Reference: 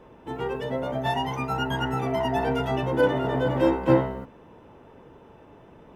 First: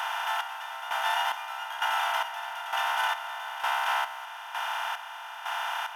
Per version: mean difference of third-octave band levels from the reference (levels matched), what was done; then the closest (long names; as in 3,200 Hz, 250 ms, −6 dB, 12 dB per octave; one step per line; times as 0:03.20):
21.0 dB: compressor on every frequency bin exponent 0.2
Butterworth high-pass 740 Hz 72 dB per octave
high-shelf EQ 7,500 Hz +6.5 dB
square-wave tremolo 1.1 Hz, depth 65%, duty 45%
level −4.5 dB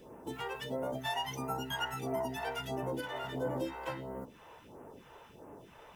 8.0 dB: downward compressor 3 to 1, threshold −34 dBFS, peak gain reduction 15 dB
spectral tilt −1.5 dB per octave
all-pass phaser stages 2, 1.5 Hz, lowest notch 200–3,700 Hz
RIAA equalisation recording
level +1.5 dB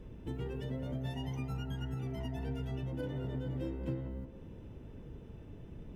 5.5 dB: guitar amp tone stack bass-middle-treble 10-0-1
downward compressor 6 to 1, threshold −54 dBFS, peak gain reduction 19.5 dB
on a send: feedback echo with a band-pass in the loop 181 ms, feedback 49%, band-pass 670 Hz, level −8 dB
on the sum: level +18 dB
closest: third